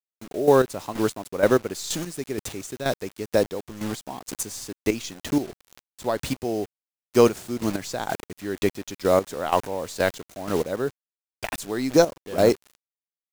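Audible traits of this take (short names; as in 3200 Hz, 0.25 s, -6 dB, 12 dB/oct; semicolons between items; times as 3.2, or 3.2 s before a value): a quantiser's noise floor 6-bit, dither none; chopped level 2.1 Hz, depth 65%, duty 30%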